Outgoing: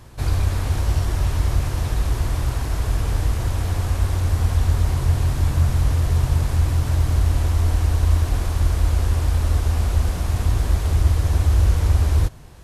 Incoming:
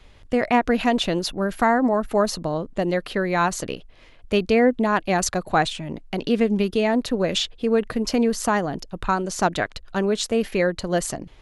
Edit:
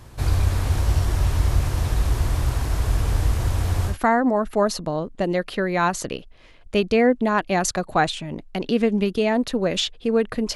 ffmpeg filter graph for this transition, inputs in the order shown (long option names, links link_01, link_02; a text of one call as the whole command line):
ffmpeg -i cue0.wav -i cue1.wav -filter_complex "[0:a]apad=whole_dur=10.55,atrim=end=10.55,atrim=end=3.98,asetpts=PTS-STARTPTS[link_01];[1:a]atrim=start=1.44:end=8.13,asetpts=PTS-STARTPTS[link_02];[link_01][link_02]acrossfade=duration=0.12:curve1=tri:curve2=tri" out.wav